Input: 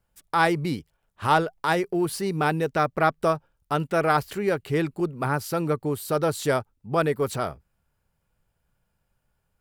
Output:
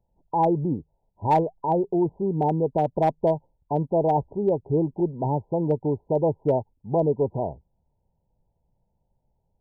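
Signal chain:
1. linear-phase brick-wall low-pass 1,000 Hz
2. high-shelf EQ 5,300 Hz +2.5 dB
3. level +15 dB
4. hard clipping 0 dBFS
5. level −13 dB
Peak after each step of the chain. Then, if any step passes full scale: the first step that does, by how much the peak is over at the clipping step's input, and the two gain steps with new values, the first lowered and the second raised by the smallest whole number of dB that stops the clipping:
−11.5, −11.5, +3.5, 0.0, −13.0 dBFS
step 3, 3.5 dB
step 3 +11 dB, step 5 −9 dB

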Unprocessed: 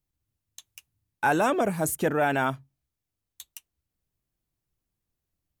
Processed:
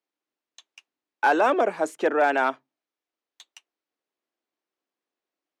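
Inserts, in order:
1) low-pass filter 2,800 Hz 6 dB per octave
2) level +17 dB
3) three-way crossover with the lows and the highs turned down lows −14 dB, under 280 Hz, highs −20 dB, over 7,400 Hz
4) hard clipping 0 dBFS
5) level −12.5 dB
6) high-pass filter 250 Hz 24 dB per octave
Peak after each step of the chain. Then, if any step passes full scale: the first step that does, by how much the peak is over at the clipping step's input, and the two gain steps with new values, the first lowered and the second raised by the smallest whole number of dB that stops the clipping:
−13.5, +3.5, +3.5, 0.0, −12.5, −9.5 dBFS
step 2, 3.5 dB
step 2 +13 dB, step 5 −8.5 dB

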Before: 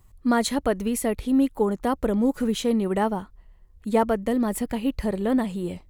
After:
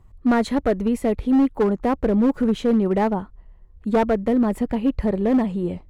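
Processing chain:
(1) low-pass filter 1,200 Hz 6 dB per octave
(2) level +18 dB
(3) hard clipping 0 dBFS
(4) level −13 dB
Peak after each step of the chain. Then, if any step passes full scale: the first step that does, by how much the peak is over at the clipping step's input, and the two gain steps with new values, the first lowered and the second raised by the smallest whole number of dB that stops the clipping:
−9.5, +8.5, 0.0, −13.0 dBFS
step 2, 8.5 dB
step 2 +9 dB, step 4 −4 dB

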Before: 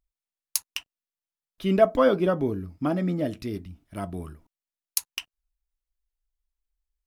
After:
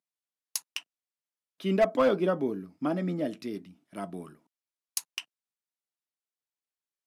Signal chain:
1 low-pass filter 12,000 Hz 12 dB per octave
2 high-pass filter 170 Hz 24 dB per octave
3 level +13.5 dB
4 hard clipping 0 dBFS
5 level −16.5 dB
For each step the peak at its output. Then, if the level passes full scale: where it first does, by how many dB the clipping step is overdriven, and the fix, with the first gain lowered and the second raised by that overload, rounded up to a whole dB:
−5.0, −5.0, +8.5, 0.0, −16.5 dBFS
step 3, 8.5 dB
step 3 +4.5 dB, step 5 −7.5 dB

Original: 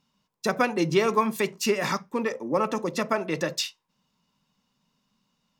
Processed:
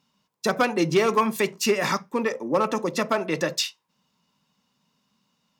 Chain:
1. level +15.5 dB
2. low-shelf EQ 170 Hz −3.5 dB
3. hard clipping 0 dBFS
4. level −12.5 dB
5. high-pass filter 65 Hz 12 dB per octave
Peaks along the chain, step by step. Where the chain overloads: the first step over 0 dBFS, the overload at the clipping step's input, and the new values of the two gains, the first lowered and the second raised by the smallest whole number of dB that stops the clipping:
+7.5, +7.0, 0.0, −12.5, −11.0 dBFS
step 1, 7.0 dB
step 1 +8.5 dB, step 4 −5.5 dB

